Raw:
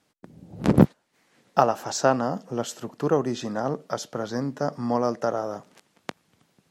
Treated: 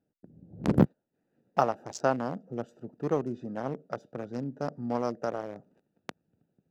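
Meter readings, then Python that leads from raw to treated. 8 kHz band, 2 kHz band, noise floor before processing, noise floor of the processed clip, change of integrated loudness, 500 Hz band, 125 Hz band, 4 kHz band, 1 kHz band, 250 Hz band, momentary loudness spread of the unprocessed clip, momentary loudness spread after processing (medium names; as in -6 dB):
-13.5 dB, -6.0 dB, -69 dBFS, -81 dBFS, -6.0 dB, -6.5 dB, -5.5 dB, -12.0 dB, -6.5 dB, -6.0 dB, 13 LU, 16 LU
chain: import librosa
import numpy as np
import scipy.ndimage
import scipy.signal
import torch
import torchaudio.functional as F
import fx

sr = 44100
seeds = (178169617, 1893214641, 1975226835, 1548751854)

y = fx.wiener(x, sr, points=41)
y = y * librosa.db_to_amplitude(-5.5)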